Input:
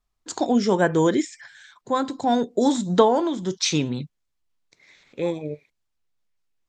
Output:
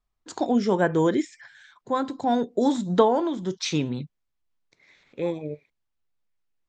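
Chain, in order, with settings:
high-shelf EQ 5,400 Hz −10.5 dB
level −2 dB

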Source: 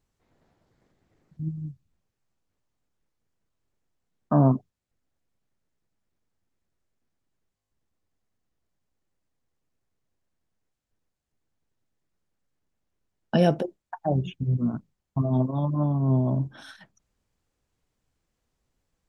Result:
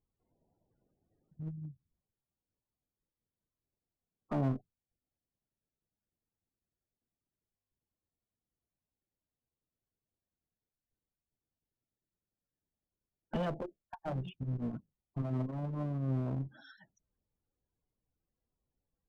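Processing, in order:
spectral peaks only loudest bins 32
asymmetric clip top −30 dBFS
level −9 dB

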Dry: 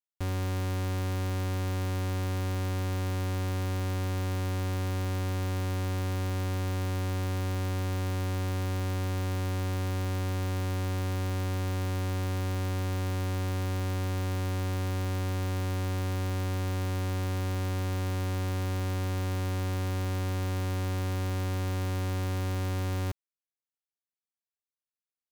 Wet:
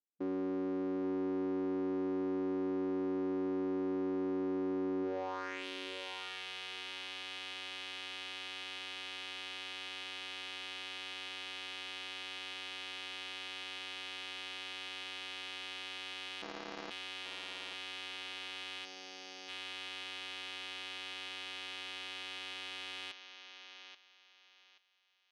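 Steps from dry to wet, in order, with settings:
band-pass filter sweep 330 Hz → 3,100 Hz, 0:05.02–0:05.66
0:16.42–0:16.91: sample-rate reduction 3,200 Hz, jitter 0%
linear-phase brick-wall band-pass 180–6,800 Hz
on a send: feedback echo with a high-pass in the loop 831 ms, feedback 27%, high-pass 390 Hz, level −10 dB
0:18.85–0:19.49: on the sum: gain on a spectral selection 860–4,400 Hz −8 dB
soft clipping −36 dBFS, distortion −20 dB
level +7.5 dB

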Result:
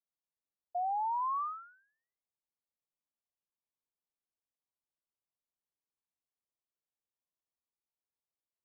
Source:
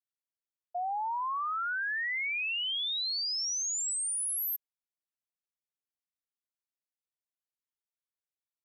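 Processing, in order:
Butterworth low-pass 1,200 Hz 96 dB per octave

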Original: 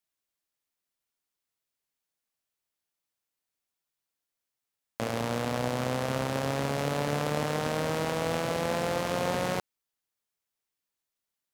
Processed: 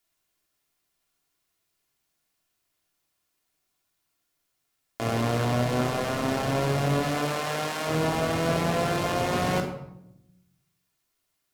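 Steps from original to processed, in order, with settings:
0:07.02–0:07.86: high-pass filter 440 Hz → 1,300 Hz 6 dB per octave
brickwall limiter −24 dBFS, peak gain reduction 10 dB
rectangular room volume 2,200 cubic metres, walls furnished, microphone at 3.2 metres
level +7.5 dB

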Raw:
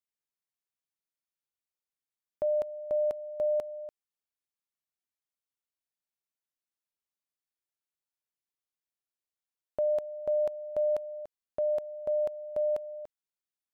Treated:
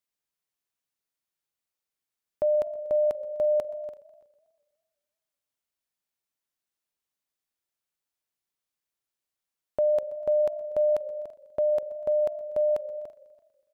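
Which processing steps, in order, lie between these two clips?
single-tap delay 336 ms −21.5 dB
feedback echo with a swinging delay time 123 ms, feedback 60%, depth 179 cents, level −21.5 dB
level +4.5 dB

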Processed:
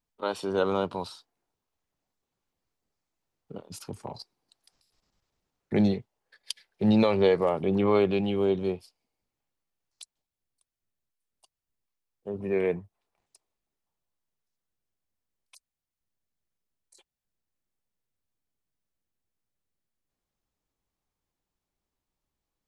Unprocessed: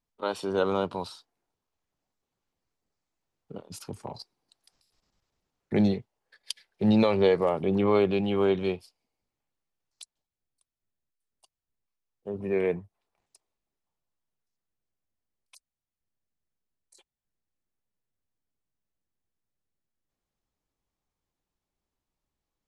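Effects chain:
0:08.30–0:08.75: parametric band 1,000 Hz → 3,200 Hz −9.5 dB 1.6 octaves

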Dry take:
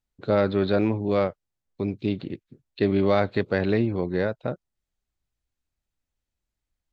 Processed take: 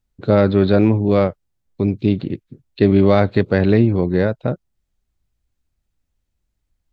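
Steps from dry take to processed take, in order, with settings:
low-shelf EQ 300 Hz +8 dB
level +4.5 dB

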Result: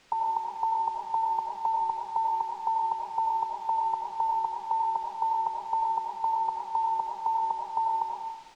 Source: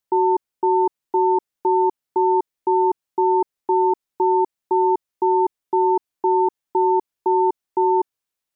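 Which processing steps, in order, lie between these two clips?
elliptic band-stop filter 190–560 Hz, stop band 80 dB
parametric band 620 Hz +2.5 dB 1.6 octaves
comb filter 5.1 ms, depth 92%
background noise white −54 dBFS
high-frequency loss of the air 130 metres
convolution reverb RT60 0.90 s, pre-delay 50 ms, DRR −1.5 dB

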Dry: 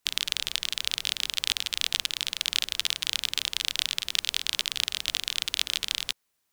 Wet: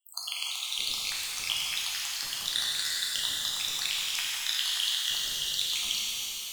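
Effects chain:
time-frequency cells dropped at random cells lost 83%
reverb with rising layers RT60 3.9 s, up +12 semitones, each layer −8 dB, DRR −5.5 dB

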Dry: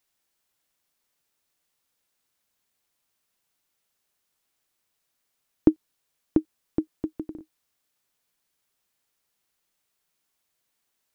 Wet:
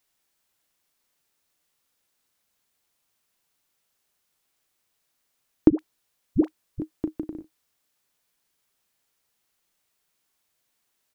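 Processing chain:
double-tracking delay 36 ms −11 dB
0:05.70–0:06.80: all-pass dispersion highs, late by 85 ms, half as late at 410 Hz
level +2 dB

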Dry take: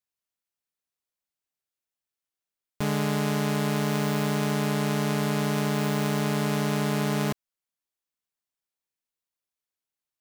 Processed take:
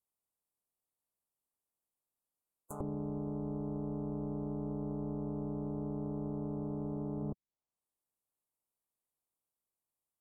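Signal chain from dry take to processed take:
compressing power law on the bin magnitudes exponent 0.29
inverse Chebyshev band-stop filter 1,800–5,200 Hz, stop band 40 dB
gate on every frequency bin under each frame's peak −30 dB strong
on a send: backwards echo 99 ms −11 dB
on the sum: treble cut that deepens with the level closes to 300 Hz, closed at −32 dBFS
level +1 dB

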